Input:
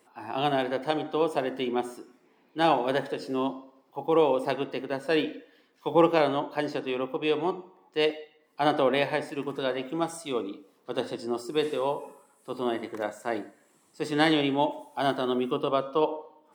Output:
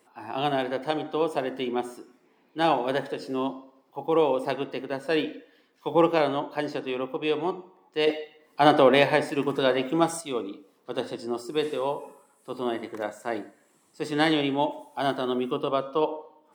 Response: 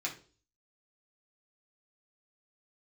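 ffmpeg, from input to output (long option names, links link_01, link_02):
-filter_complex "[0:a]asettb=1/sr,asplit=3[link_01][link_02][link_03];[link_01]atrim=end=8.074[link_04];[link_02]atrim=start=8.07:end=10.21,asetpts=PTS-STARTPTS,afade=type=in:duration=0.004:curve=qsin,afade=type=out:start_time=2.136:duration=0.004:curve=qsin,acontrast=61[link_05];[link_03]atrim=start=10.206[link_06];[link_04][link_05]acrossfade=duration=0.004:curve1=hsin:curve2=qsin[link_07];[link_07][link_06]acrossfade=duration=0.004:curve1=qsin:curve2=hsin"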